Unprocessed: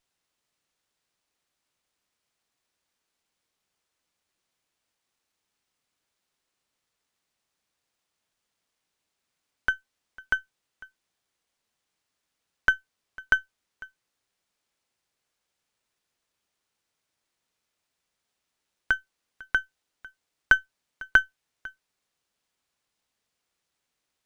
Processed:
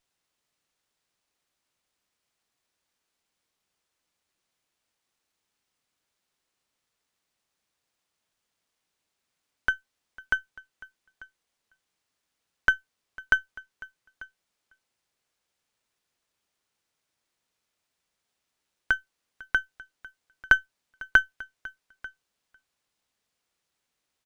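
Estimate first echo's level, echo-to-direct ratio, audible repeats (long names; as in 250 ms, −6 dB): −22.0 dB, −22.0 dB, 1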